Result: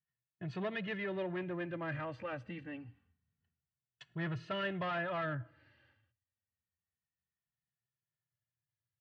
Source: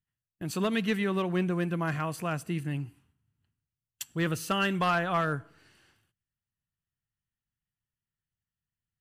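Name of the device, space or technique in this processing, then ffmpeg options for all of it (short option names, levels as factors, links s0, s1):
barber-pole flanger into a guitar amplifier: -filter_complex "[0:a]asplit=2[s0][s1];[s1]adelay=2.3,afreqshift=-0.27[s2];[s0][s2]amix=inputs=2:normalize=1,asoftclip=type=tanh:threshold=0.0335,highpass=80,equalizer=f=81:t=q:w=4:g=9,equalizer=f=120:t=q:w=4:g=9,equalizer=f=580:t=q:w=4:g=8,equalizer=f=1800:t=q:w=4:g=7,lowpass=f=3700:w=0.5412,lowpass=f=3700:w=1.3066,volume=0.562"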